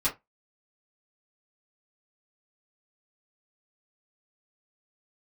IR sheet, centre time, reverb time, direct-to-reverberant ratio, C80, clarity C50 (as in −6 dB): 17 ms, 0.20 s, −10.0 dB, 25.5 dB, 14.5 dB